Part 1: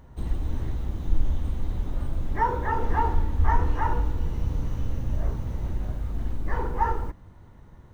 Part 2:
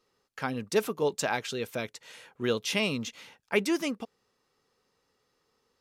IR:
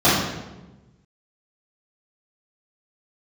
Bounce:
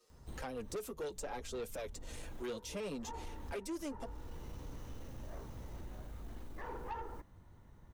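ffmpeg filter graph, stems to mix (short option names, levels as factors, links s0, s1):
-filter_complex "[0:a]adelay=100,volume=0.316[s0];[1:a]equalizer=f=125:t=o:w=1:g=-5,equalizer=f=500:t=o:w=1:g=7,equalizer=f=8000:t=o:w=1:g=7,asplit=2[s1][s2];[s2]adelay=6,afreqshift=-1.9[s3];[s1][s3]amix=inputs=2:normalize=1,volume=1,asplit=2[s4][s5];[s5]apad=whole_len=354526[s6];[s0][s6]sidechaincompress=threshold=0.0158:ratio=8:attack=7.4:release=534[s7];[s7][s4]amix=inputs=2:normalize=0,highshelf=f=5100:g=7.5,acrossover=split=260|1000[s8][s9][s10];[s8]acompressor=threshold=0.00631:ratio=4[s11];[s9]acompressor=threshold=0.0126:ratio=4[s12];[s10]acompressor=threshold=0.00355:ratio=4[s13];[s11][s12][s13]amix=inputs=3:normalize=0,asoftclip=type=tanh:threshold=0.0158"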